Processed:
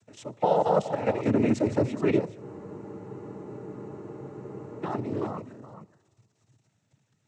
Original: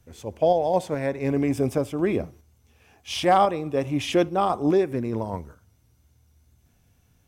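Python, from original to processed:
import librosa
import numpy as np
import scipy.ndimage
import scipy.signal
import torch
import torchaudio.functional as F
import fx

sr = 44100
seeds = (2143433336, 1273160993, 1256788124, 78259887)

p1 = fx.level_steps(x, sr, step_db=12)
p2 = fx.comb_fb(p1, sr, f0_hz=130.0, decay_s=1.7, harmonics='all', damping=0.0, mix_pct=40)
p3 = p2 + fx.echo_single(p2, sr, ms=423, db=-11.5, dry=0)
p4 = fx.noise_vocoder(p3, sr, seeds[0], bands=12)
p5 = fx.spec_freeze(p4, sr, seeds[1], at_s=2.43, hold_s=2.41)
y = F.gain(torch.from_numpy(p5), 7.0).numpy()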